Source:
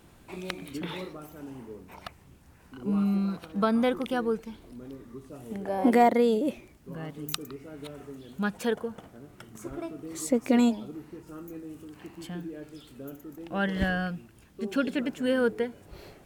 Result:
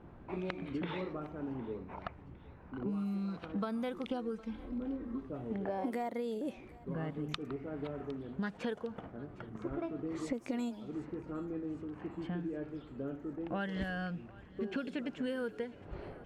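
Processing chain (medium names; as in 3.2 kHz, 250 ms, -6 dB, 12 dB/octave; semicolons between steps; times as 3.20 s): level-controlled noise filter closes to 1.2 kHz, open at -21 dBFS; 4.11–5.23 s: comb 3.8 ms, depth 97%; compression 16:1, threshold -36 dBFS, peak gain reduction 21 dB; thinning echo 759 ms, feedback 61%, level -20 dB; 7.29–8.55 s: loudspeaker Doppler distortion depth 0.27 ms; trim +2.5 dB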